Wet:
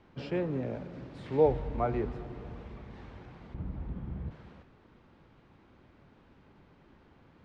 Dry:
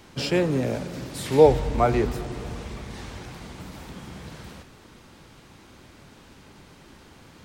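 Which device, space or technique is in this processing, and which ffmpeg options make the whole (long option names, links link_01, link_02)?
phone in a pocket: -filter_complex "[0:a]lowpass=3400,highshelf=frequency=2300:gain=-9,asettb=1/sr,asplit=3[link_01][link_02][link_03];[link_01]atrim=end=3.544[link_04];[link_02]atrim=start=3.54:end=4.31,asetpts=PTS-STARTPTS,afade=type=in:duration=0.004:curve=qsin,afade=type=out:start_time=0.766:duration=0.004:curve=qsin,aemphasis=mode=reproduction:type=riaa[link_05];[link_03]atrim=start=4.306[link_06];[link_04][link_05]acrossfade=duration=0.004:curve1=hsin:curve2=qsin[link_07];[link_07][link_06]acrossfade=duration=0.004:curve1=qsin:curve2=hsin,volume=-9dB"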